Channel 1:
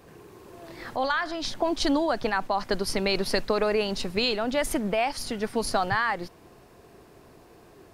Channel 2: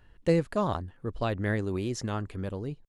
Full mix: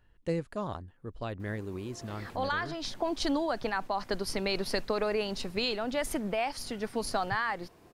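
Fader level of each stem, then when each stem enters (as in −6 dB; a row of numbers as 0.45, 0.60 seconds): −5.5, −7.5 decibels; 1.40, 0.00 seconds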